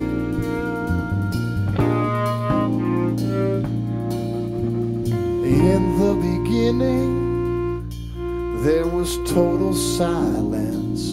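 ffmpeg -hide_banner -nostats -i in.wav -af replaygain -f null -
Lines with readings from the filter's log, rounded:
track_gain = +2.2 dB
track_peak = 0.427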